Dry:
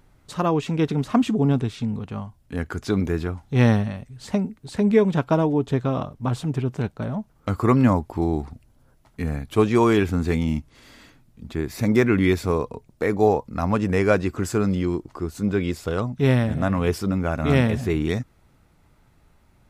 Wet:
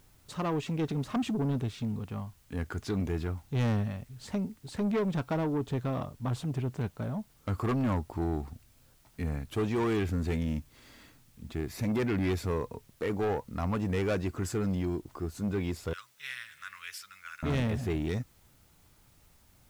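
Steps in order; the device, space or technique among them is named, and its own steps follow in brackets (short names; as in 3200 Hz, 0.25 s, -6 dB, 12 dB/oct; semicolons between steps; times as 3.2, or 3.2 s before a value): 15.93–17.43 inverse Chebyshev high-pass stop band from 760 Hz, stop band 40 dB; open-reel tape (soft clip -18.5 dBFS, distortion -10 dB; bell 92 Hz +3 dB; white noise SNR 34 dB); gain -6.5 dB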